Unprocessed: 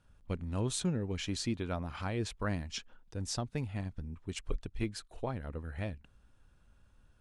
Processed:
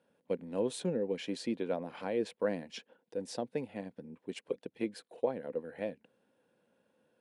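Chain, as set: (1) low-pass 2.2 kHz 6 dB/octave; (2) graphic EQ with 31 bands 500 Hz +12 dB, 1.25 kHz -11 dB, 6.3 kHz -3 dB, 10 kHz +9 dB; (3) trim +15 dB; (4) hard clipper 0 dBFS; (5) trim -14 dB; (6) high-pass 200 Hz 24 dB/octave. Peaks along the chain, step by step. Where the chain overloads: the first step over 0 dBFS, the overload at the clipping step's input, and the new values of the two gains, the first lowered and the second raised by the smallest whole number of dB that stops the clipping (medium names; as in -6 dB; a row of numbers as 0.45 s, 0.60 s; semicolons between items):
-20.0 dBFS, -17.5 dBFS, -2.5 dBFS, -2.5 dBFS, -16.5 dBFS, -18.5 dBFS; nothing clips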